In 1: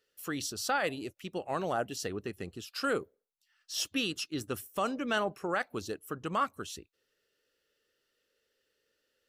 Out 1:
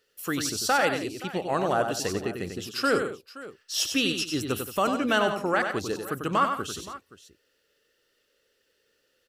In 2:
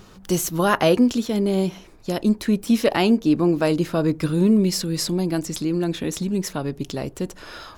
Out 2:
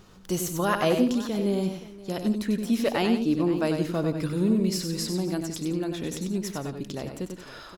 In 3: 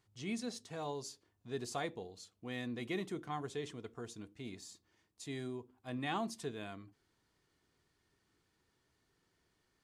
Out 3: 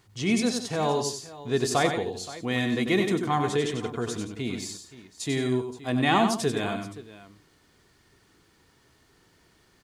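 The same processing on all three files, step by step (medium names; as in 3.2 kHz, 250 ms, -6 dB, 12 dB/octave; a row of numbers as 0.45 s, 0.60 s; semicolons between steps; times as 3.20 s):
multi-tap echo 95/172/523 ms -6.5/-15/-17 dB; normalise loudness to -27 LUFS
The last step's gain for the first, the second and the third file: +6.5 dB, -6.5 dB, +15.0 dB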